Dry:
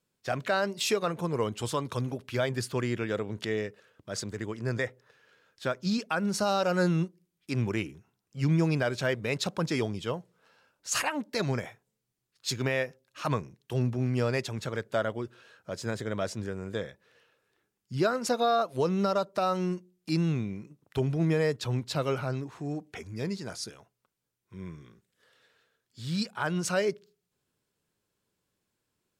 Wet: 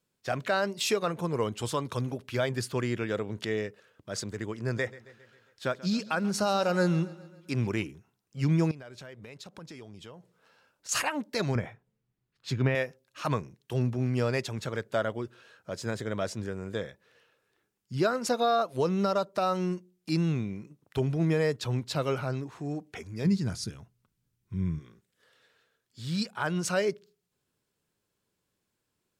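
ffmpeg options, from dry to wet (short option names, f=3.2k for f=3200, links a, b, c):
-filter_complex "[0:a]asettb=1/sr,asplit=3[a][b][c];[a]atrim=end=4.544[d];[b]atrim=start=4.54:end=7.84,asetpts=PTS-STARTPTS,afade=t=in:d=0.004:c=qsin,afade=t=out:st=3.296:d=0.004:c=qsin,aecho=1:1:135|270|405|540|675:0.112|0.064|0.0365|0.0208|0.0118,atrim=end_sample=145530[e];[c]atrim=start=7.836[f];[d][e]acrossfade=d=0.004:c1=hsin:c2=qsin[g];[g][f]acrossfade=d=0.004:c1=qsin:c2=hsin,asettb=1/sr,asplit=3[h][i][j];[h]atrim=end=8.714[k];[i]atrim=start=8.71:end=10.89,asetpts=PTS-STARTPTS,afade=t=in:d=0.004:c=qsin,afade=t=out:st=2.176:d=0.004:c=qsin,acompressor=threshold=-44dB:ratio=5:attack=3.2:release=140:knee=1:detection=peak[l];[j]atrim=start=10.886[m];[k][l]acrossfade=d=0.004:c1=hsin:c2=qsin[n];[n][m]acrossfade=d=0.004:c1=qsin:c2=hsin,asettb=1/sr,asplit=3[o][p][q];[o]atrim=end=11.554[r];[p]atrim=start=11.55:end=12.75,asetpts=PTS-STARTPTS,afade=t=in:d=0.004:c=qsin,afade=t=out:st=1.196:d=0.004:c=qsin,bass=f=250:g=7,treble=f=4k:g=-14[s];[q]atrim=start=12.746[t];[r][s]acrossfade=d=0.004:c1=hsin:c2=qsin[u];[u][t]acrossfade=d=0.004:c1=qsin:c2=hsin,asplit=3[v][w][x];[v]afade=t=out:st=23.24:d=0.02[y];[w]asubboost=boost=6:cutoff=210,afade=t=in:st=23.24:d=0.02,afade=t=out:st=24.78:d=0.02[z];[x]afade=t=in:st=24.78:d=0.02[aa];[y][z][aa]amix=inputs=3:normalize=0"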